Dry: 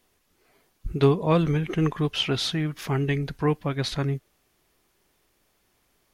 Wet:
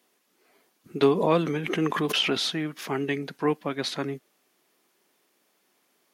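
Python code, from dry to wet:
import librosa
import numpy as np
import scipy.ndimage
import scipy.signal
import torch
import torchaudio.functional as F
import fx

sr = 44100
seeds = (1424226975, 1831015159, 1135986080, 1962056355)

y = scipy.signal.sosfilt(scipy.signal.butter(4, 200.0, 'highpass', fs=sr, output='sos'), x)
y = fx.pre_swell(y, sr, db_per_s=49.0, at=(1.01, 2.42), fade=0.02)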